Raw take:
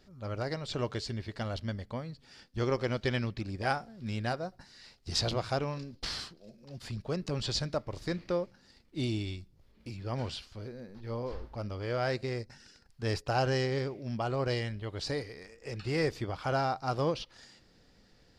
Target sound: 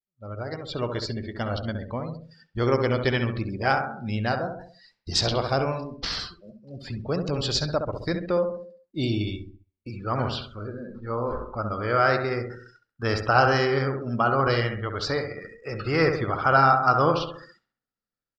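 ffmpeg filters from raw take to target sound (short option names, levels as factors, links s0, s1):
-filter_complex "[0:a]asetnsamples=n=441:p=0,asendcmd='9.9 equalizer g 13',equalizer=f=1300:w=2.8:g=2,dynaudnorm=f=510:g=3:m=2.24,lowshelf=f=150:g=-3.5,agate=range=0.126:threshold=0.00316:ratio=16:detection=peak,asplit=2[s0][s1];[s1]adelay=67,lowpass=f=3400:p=1,volume=0.501,asplit=2[s2][s3];[s3]adelay=67,lowpass=f=3400:p=1,volume=0.54,asplit=2[s4][s5];[s5]adelay=67,lowpass=f=3400:p=1,volume=0.54,asplit=2[s6][s7];[s7]adelay=67,lowpass=f=3400:p=1,volume=0.54,asplit=2[s8][s9];[s9]adelay=67,lowpass=f=3400:p=1,volume=0.54,asplit=2[s10][s11];[s11]adelay=67,lowpass=f=3400:p=1,volume=0.54,asplit=2[s12][s13];[s13]adelay=67,lowpass=f=3400:p=1,volume=0.54[s14];[s0][s2][s4][s6][s8][s10][s12][s14]amix=inputs=8:normalize=0,afftdn=nr=22:nf=-40"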